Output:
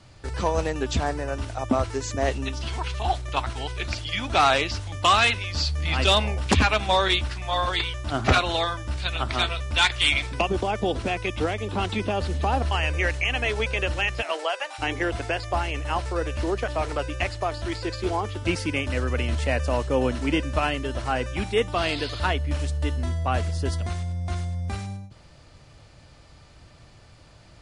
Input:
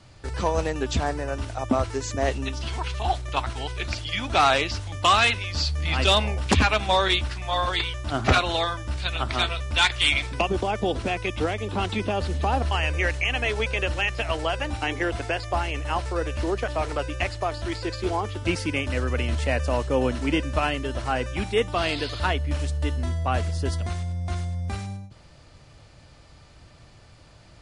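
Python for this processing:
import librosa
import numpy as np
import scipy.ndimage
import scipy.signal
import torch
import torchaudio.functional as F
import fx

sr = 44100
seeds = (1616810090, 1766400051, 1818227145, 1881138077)

y = fx.highpass(x, sr, hz=fx.line((14.21, 280.0), (14.78, 710.0)), slope=24, at=(14.21, 14.78), fade=0.02)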